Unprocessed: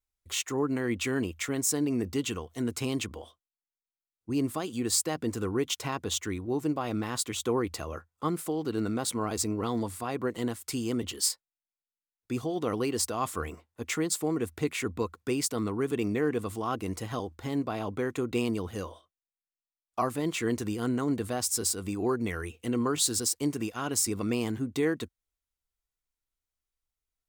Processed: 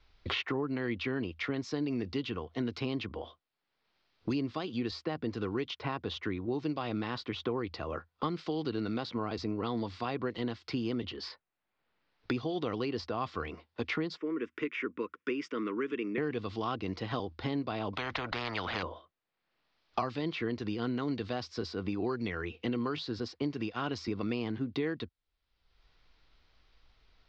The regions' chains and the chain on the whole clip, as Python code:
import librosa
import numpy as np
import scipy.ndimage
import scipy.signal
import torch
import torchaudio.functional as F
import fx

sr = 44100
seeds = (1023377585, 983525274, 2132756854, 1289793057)

y = fx.chain(x, sr, fx.highpass(hz=280.0, slope=24),
    fx.fixed_phaser(hz=1800.0, stages=4), at=(14.17, 16.18))
y = fx.chain(y, sr, fx.low_shelf(hz=410.0, db=8.5),
    fx.spectral_comp(ratio=10.0), at=(17.93, 18.83))
y = scipy.signal.sosfilt(scipy.signal.butter(8, 4900.0, 'lowpass', fs=sr, output='sos'), y)
y = fx.band_squash(y, sr, depth_pct=100)
y = y * librosa.db_to_amplitude(-4.0)